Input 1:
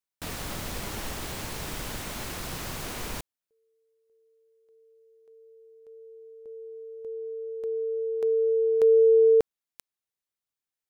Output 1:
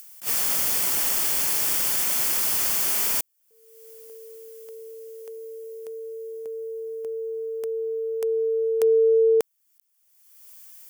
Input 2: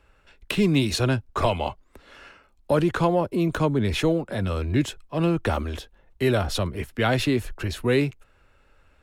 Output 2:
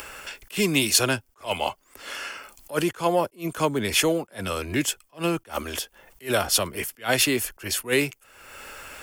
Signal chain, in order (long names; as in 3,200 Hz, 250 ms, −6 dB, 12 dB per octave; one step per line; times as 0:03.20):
RIAA equalisation recording
notch filter 3,900 Hz, Q 5.9
upward compression, threshold −28 dBFS
level that may rise only so fast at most 270 dB per second
level +3 dB